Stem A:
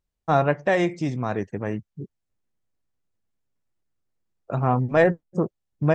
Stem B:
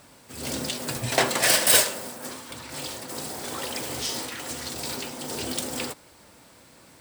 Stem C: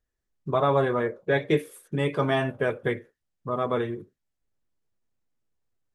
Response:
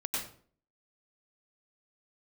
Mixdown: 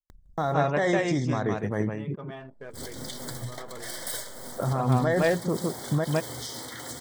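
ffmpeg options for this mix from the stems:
-filter_complex "[0:a]highshelf=frequency=4400:gain=8,acompressor=mode=upward:threshold=-27dB:ratio=2.5,adelay=100,volume=1dB,asplit=2[link_01][link_02];[link_02]volume=-7.5dB[link_03];[1:a]equalizer=frequency=120:width_type=o:width=0.29:gain=8,acompressor=threshold=-32dB:ratio=4,adelay=2400,volume=-2dB[link_04];[2:a]volume=-17dB,asplit=3[link_05][link_06][link_07];[link_06]volume=-18.5dB[link_08];[link_07]apad=whole_len=414926[link_09];[link_04][link_09]sidechaincompress=threshold=-47dB:ratio=5:attack=8.6:release=126[link_10];[link_01][link_10]amix=inputs=2:normalize=0,asuperstop=centerf=2600:order=20:qfactor=3.3,alimiter=limit=-16.5dB:level=0:latency=1:release=50,volume=0dB[link_11];[link_03][link_08]amix=inputs=2:normalize=0,aecho=0:1:159:1[link_12];[link_05][link_11][link_12]amix=inputs=3:normalize=0,anlmdn=0.0398"

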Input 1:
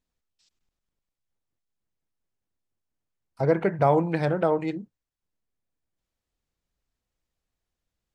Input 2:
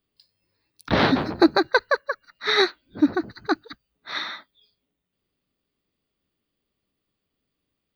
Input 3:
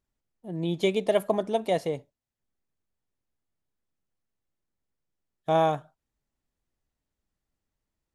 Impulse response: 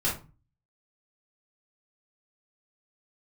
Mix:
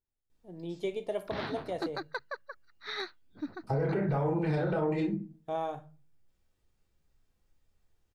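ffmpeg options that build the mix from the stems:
-filter_complex "[0:a]alimiter=limit=-15.5dB:level=0:latency=1,adelay=300,volume=-1.5dB,asplit=2[link_01][link_02];[link_02]volume=-4.5dB[link_03];[1:a]equalizer=frequency=410:width=0.93:gain=-4.5,asoftclip=type=hard:threshold=-8.5dB,adynamicequalizer=threshold=0.0158:dfrequency=1900:dqfactor=0.7:tfrequency=1900:tqfactor=0.7:attack=5:release=100:ratio=0.375:range=2.5:mode=cutabove:tftype=highshelf,adelay=400,volume=-16dB[link_04];[2:a]equalizer=frequency=210:width_type=o:width=0.31:gain=-7,volume=-13dB,asplit=2[link_05][link_06];[link_06]volume=-16.5dB[link_07];[link_01][link_05]amix=inputs=2:normalize=0,tiltshelf=frequency=970:gain=3.5,alimiter=limit=-22.5dB:level=0:latency=1,volume=0dB[link_08];[3:a]atrim=start_sample=2205[link_09];[link_03][link_07]amix=inputs=2:normalize=0[link_10];[link_10][link_09]afir=irnorm=-1:irlink=0[link_11];[link_04][link_08][link_11]amix=inputs=3:normalize=0,asoftclip=type=tanh:threshold=-9.5dB,alimiter=limit=-22.5dB:level=0:latency=1:release=227"

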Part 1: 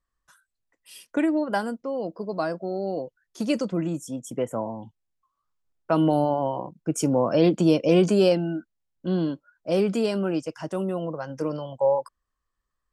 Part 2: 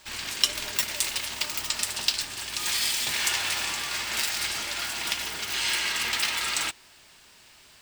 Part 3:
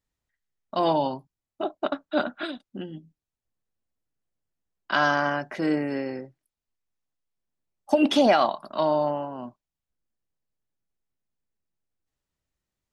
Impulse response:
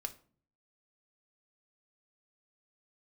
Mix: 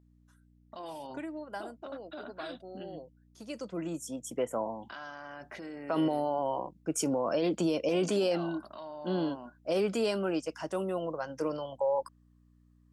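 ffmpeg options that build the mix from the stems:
-filter_complex "[0:a]highpass=frequency=220:poles=1,volume=-1.5dB,afade=type=in:start_time=3.54:duration=0.46:silence=0.251189[link_01];[2:a]acompressor=threshold=-25dB:ratio=6,aeval=exprs='val(0)+0.00316*(sin(2*PI*60*n/s)+sin(2*PI*2*60*n/s)/2+sin(2*PI*3*60*n/s)/3+sin(2*PI*4*60*n/s)/4+sin(2*PI*5*60*n/s)/5)':channel_layout=same,alimiter=level_in=3.5dB:limit=-24dB:level=0:latency=1:release=33,volume=-3.5dB,volume=-5.5dB[link_02];[link_01][link_02]amix=inputs=2:normalize=0,lowshelf=frequency=200:gain=-8,alimiter=limit=-21dB:level=0:latency=1:release=18,volume=0dB"

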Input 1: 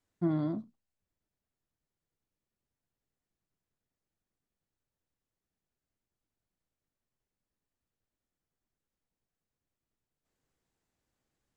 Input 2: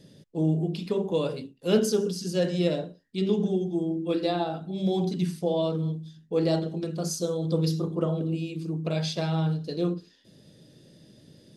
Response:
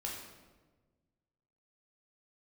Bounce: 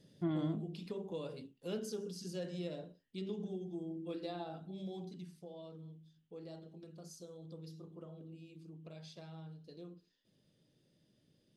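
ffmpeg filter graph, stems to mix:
-filter_complex "[0:a]lowpass=frequency=3100:width_type=q:width=6.4,volume=-6dB[link_01];[1:a]acompressor=threshold=-31dB:ratio=2,volume=-11dB,afade=type=out:start_time=4.59:duration=0.76:silence=0.375837[link_02];[link_01][link_02]amix=inputs=2:normalize=0"

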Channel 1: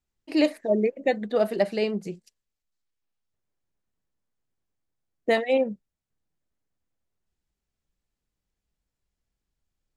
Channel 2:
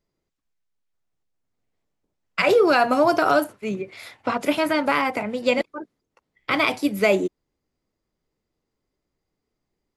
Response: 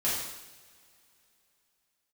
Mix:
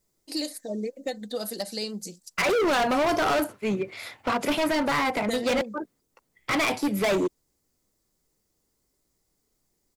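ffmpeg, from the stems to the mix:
-filter_complex "[0:a]aexciter=amount=8.4:drive=6.2:freq=3800,aecho=1:1:3.9:0.48,acompressor=threshold=-20dB:ratio=4,volume=-7dB[link_01];[1:a]volume=1.5dB[link_02];[link_01][link_02]amix=inputs=2:normalize=0,volume=21dB,asoftclip=hard,volume=-21dB"

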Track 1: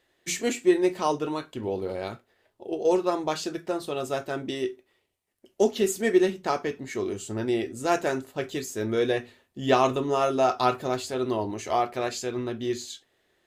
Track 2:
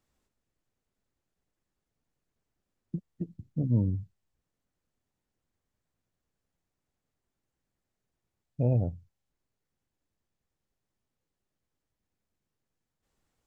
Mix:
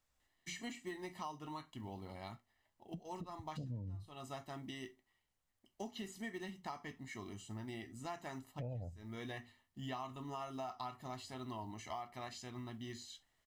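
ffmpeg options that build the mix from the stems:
ffmpeg -i stem1.wav -i stem2.wav -filter_complex "[0:a]acrossover=split=5100[link_01][link_02];[link_02]acompressor=threshold=-45dB:ratio=4:attack=1:release=60[link_03];[link_01][link_03]amix=inputs=2:normalize=0,aecho=1:1:1:0.75,acrusher=bits=9:mode=log:mix=0:aa=0.000001,adelay=200,volume=-13.5dB[link_04];[1:a]equalizer=frequency=200:width_type=o:width=2.2:gain=-9,volume=-1.5dB,asplit=2[link_05][link_06];[link_06]apad=whole_len=602500[link_07];[link_04][link_07]sidechaincompress=threshold=-53dB:ratio=4:attack=22:release=249[link_08];[link_08][link_05]amix=inputs=2:normalize=0,equalizer=frequency=370:width_type=o:width=0.44:gain=-7,acompressor=threshold=-41dB:ratio=6" out.wav

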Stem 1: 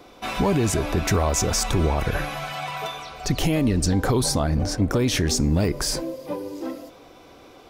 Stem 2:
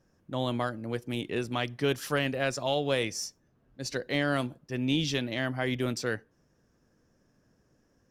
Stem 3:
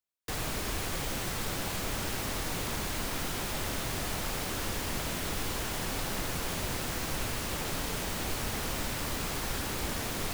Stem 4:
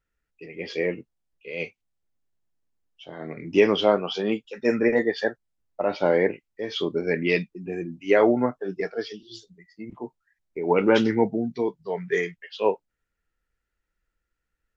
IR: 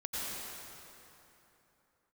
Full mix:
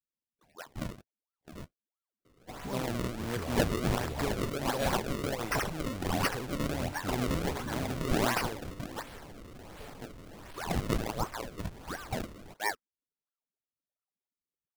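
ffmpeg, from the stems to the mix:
-filter_complex "[0:a]asoftclip=type=tanh:threshold=-14dB,adelay=2250,volume=-17dB[link_01];[1:a]highshelf=frequency=3500:width_type=q:width=3:gain=13,acompressor=threshold=-28dB:ratio=16,adelay=2400,volume=-1dB[link_02];[2:a]asoftclip=type=tanh:threshold=-33.5dB,adelay=2200,volume=-10.5dB[link_03];[3:a]afwtdn=0.0398,adynamicequalizer=threshold=0.0141:dfrequency=180:dqfactor=1:tfrequency=180:tqfactor=1:attack=5:release=100:ratio=0.375:range=3.5:mode=cutabove:tftype=bell,aeval=exprs='val(0)*sin(2*PI*790*n/s+790*0.75/3*sin(2*PI*3*n/s))':channel_layout=same,volume=-7.5dB[link_04];[link_01][link_02][link_03][link_04]amix=inputs=4:normalize=0,acrusher=samples=31:mix=1:aa=0.000001:lfo=1:lforange=49.6:lforate=1.4"

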